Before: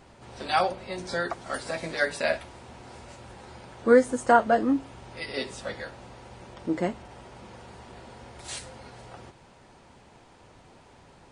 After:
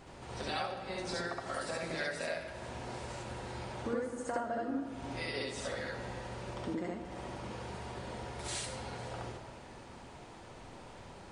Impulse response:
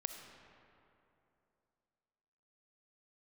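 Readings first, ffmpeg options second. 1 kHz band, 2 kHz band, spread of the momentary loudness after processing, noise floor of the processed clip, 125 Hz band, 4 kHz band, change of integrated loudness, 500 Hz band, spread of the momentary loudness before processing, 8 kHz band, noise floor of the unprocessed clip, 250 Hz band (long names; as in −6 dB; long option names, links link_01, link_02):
−12.0 dB, −9.0 dB, 15 LU, −51 dBFS, −1.0 dB, −4.5 dB, −12.5 dB, −12.0 dB, 26 LU, −3.0 dB, −55 dBFS, −10.0 dB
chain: -filter_complex "[0:a]acompressor=threshold=-37dB:ratio=6,asplit=2[link_01][link_02];[1:a]atrim=start_sample=2205,adelay=69[link_03];[link_02][link_03]afir=irnorm=-1:irlink=0,volume=2.5dB[link_04];[link_01][link_04]amix=inputs=2:normalize=0,volume=-1dB"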